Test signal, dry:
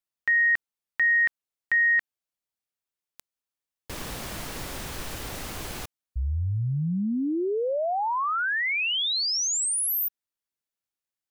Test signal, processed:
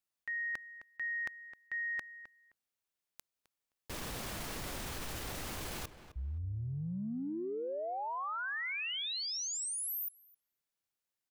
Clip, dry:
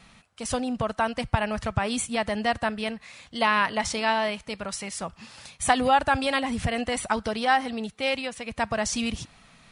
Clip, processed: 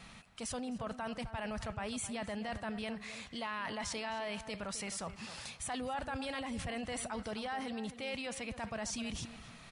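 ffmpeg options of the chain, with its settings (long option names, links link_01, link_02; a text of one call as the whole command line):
ffmpeg -i in.wav -filter_complex "[0:a]areverse,acompressor=threshold=-39dB:ratio=5:attack=3.7:release=28:knee=6:detection=rms,areverse,asplit=2[link_01][link_02];[link_02]adelay=261,lowpass=frequency=2500:poles=1,volume=-12dB,asplit=2[link_03][link_04];[link_04]adelay=261,lowpass=frequency=2500:poles=1,volume=0.19[link_05];[link_01][link_03][link_05]amix=inputs=3:normalize=0" out.wav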